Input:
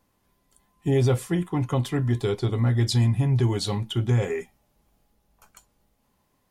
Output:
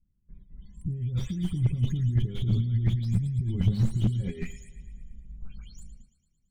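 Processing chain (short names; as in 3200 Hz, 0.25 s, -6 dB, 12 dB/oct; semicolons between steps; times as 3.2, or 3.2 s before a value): spectral delay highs late, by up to 0.249 s; gate with hold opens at -58 dBFS; negative-ratio compressor -35 dBFS, ratio -1; RIAA curve playback; loudest bins only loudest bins 64; EQ curve 190 Hz 0 dB, 920 Hz -26 dB, 3500 Hz +5 dB; thinning echo 0.112 s, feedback 63%, high-pass 300 Hz, level -15.5 dB; slew limiter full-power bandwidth 19 Hz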